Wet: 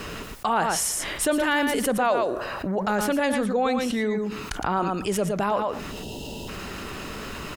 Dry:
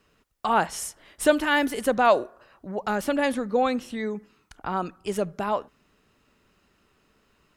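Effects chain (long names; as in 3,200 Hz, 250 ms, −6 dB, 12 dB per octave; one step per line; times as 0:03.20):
gain on a spectral selection 0:05.92–0:06.48, 990–2,600 Hz −23 dB
single-tap delay 115 ms −8.5 dB
envelope flattener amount 70%
level −6 dB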